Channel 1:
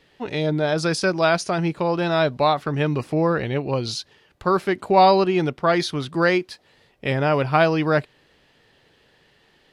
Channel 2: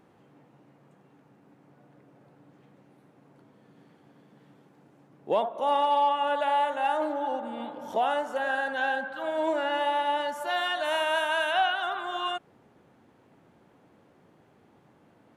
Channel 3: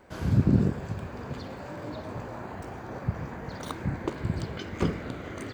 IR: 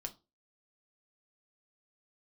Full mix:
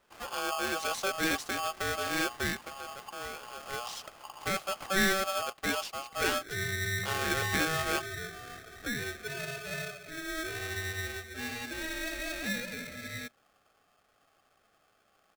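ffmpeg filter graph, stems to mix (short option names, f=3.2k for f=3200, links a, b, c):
-filter_complex "[0:a]acrusher=bits=6:mix=0:aa=0.5,volume=-3.5dB,afade=t=out:st=2.27:d=0.5:silence=0.316228,afade=t=in:st=3.6:d=0.23:silence=0.375837,asplit=2[a][b];[b]volume=-19.5dB[c];[1:a]highshelf=f=5.1k:g=-10.5,adelay=900,volume=-10dB,asplit=2[d][e];[e]volume=-17.5dB[f];[2:a]acompressor=threshold=-27dB:ratio=6,volume=-14.5dB[g];[3:a]atrim=start_sample=2205[h];[c][f]amix=inputs=2:normalize=0[i];[i][h]afir=irnorm=-1:irlink=0[j];[a][d][g][j]amix=inputs=4:normalize=0,aeval=exprs='val(0)*sgn(sin(2*PI*960*n/s))':c=same"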